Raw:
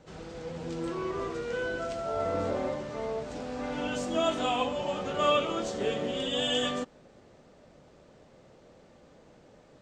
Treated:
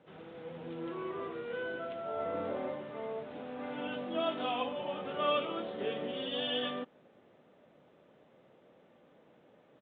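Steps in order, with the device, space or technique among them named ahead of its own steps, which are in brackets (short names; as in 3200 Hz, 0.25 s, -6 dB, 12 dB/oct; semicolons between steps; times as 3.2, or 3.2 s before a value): Bluetooth headset (HPF 160 Hz 12 dB/oct; downsampling 8000 Hz; gain -5.5 dB; SBC 64 kbps 16000 Hz)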